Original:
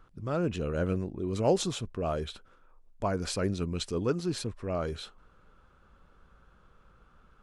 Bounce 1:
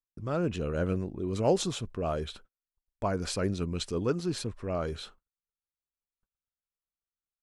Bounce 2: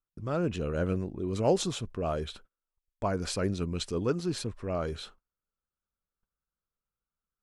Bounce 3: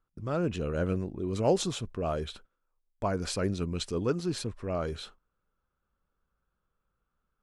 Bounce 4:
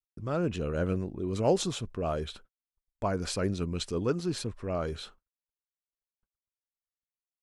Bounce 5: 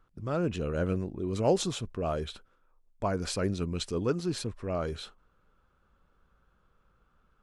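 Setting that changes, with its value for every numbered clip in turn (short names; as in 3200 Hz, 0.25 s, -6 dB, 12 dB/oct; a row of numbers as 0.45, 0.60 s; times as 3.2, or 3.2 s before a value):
gate, range: -47, -35, -21, -60, -8 dB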